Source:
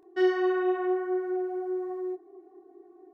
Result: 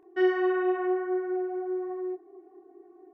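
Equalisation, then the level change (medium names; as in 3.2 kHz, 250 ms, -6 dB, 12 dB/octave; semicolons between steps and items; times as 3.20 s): resonant high shelf 3.2 kHz -7 dB, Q 1.5; 0.0 dB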